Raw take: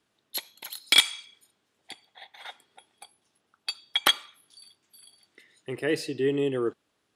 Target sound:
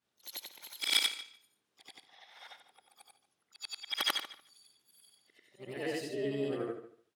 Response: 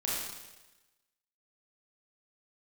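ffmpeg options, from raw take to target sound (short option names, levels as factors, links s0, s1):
-filter_complex "[0:a]afftfilt=real='re':imag='-im':win_size=8192:overlap=0.75,asplit=2[s0][s1];[s1]adelay=147,lowpass=f=4800:p=1,volume=0.2,asplit=2[s2][s3];[s3]adelay=147,lowpass=f=4800:p=1,volume=0.16[s4];[s0][s2][s4]amix=inputs=3:normalize=0,asplit=2[s5][s6];[s6]asetrate=66075,aresample=44100,atempo=0.66742,volume=0.316[s7];[s5][s7]amix=inputs=2:normalize=0,volume=0.596"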